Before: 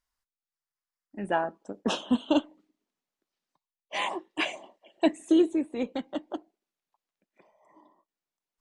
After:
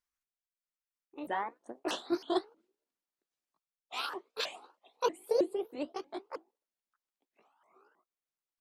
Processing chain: repeated pitch sweeps +8 st, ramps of 0.318 s; low shelf 98 Hz -9 dB; gain -5.5 dB

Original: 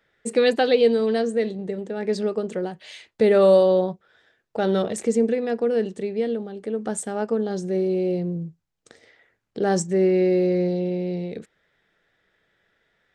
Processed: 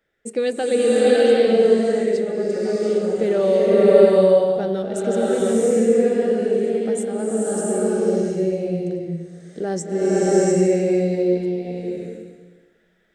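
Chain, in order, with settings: ten-band EQ 125 Hz -6 dB, 1000 Hz -7 dB, 2000 Hz -3 dB, 4000 Hz -6 dB; bloom reverb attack 0.7 s, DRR -7.5 dB; gain -1.5 dB

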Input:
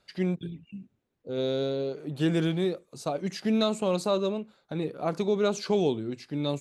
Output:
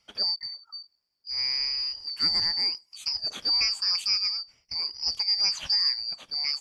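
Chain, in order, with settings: four-band scrambler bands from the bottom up 2341

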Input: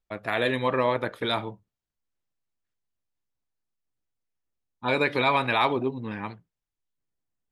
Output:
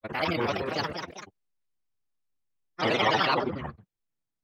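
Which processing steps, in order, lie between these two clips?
grains, pitch spread up and down by 7 st; echoes that change speed 0.473 s, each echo +2 st, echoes 2, each echo -6 dB; time stretch by phase-locked vocoder 0.59×

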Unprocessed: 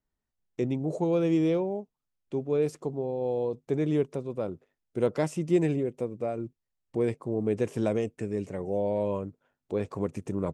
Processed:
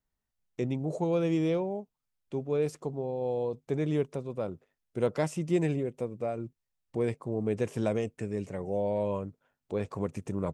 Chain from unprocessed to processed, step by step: bell 330 Hz -4 dB 1.1 oct

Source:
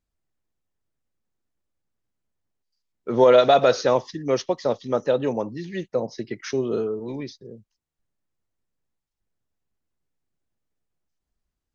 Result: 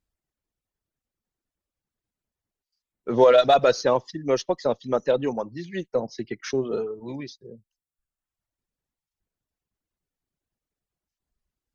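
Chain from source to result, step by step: reverb removal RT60 1 s; added harmonics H 8 -38 dB, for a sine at -6 dBFS

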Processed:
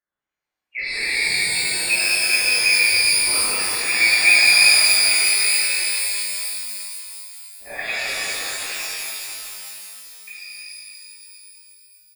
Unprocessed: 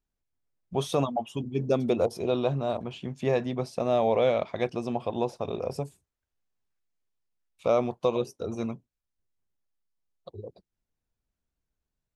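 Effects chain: LFO high-pass sine 2.5 Hz 550–2200 Hz; inverted band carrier 3000 Hz; on a send: echo 0.234 s -6 dB; on the sum: shimmer reverb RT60 3.1 s, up +12 st, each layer -2 dB, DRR -11.5 dB; gain -4.5 dB

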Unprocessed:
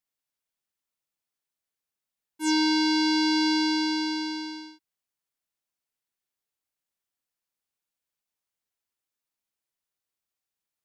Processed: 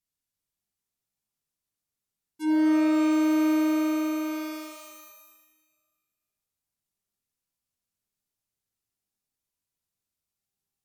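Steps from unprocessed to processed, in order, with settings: treble ducked by the level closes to 1400 Hz, closed at -26 dBFS; tone controls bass +13 dB, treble +6 dB; shimmer reverb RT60 1.4 s, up +12 st, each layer -2 dB, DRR 3.5 dB; gain -5.5 dB

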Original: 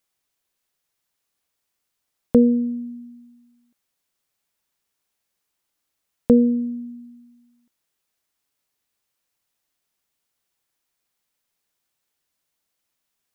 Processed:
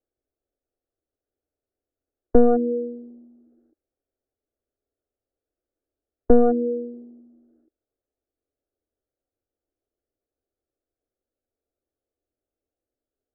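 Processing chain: one-sided fold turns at -17 dBFS; Bessel low-pass 560 Hz, order 8; formant shift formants +5 st; fixed phaser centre 410 Hz, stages 4; gain +7 dB

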